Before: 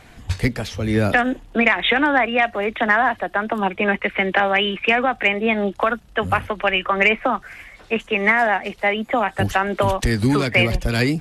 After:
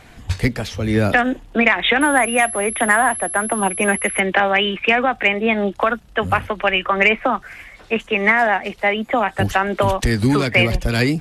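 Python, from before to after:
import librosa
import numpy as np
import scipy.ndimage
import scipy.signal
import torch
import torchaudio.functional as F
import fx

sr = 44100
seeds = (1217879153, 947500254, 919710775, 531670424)

y = fx.pwm(x, sr, carrier_hz=11000.0, at=(2.01, 4.2))
y = F.gain(torch.from_numpy(y), 1.5).numpy()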